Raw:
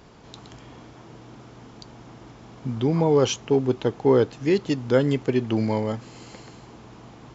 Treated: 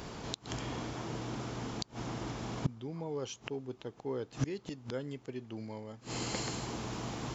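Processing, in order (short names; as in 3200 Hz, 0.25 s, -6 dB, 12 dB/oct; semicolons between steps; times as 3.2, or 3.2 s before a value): high shelf 4800 Hz +6 dB, from 6.35 s +11.5 dB; flipped gate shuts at -25 dBFS, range -25 dB; gain +5.5 dB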